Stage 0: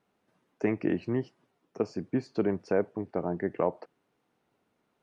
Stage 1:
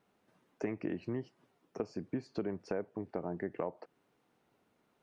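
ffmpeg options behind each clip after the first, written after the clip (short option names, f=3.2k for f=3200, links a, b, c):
-af "acompressor=threshold=-37dB:ratio=3,volume=1dB"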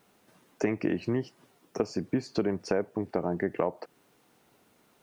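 -af "highshelf=f=4.3k:g=10.5,volume=8.5dB"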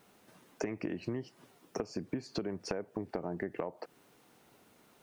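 -af "acompressor=threshold=-34dB:ratio=6,volume=1dB"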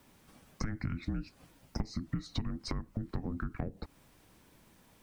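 -af "afreqshift=-430,volume=1.5dB"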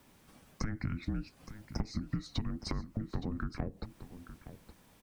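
-af "aecho=1:1:868:0.224"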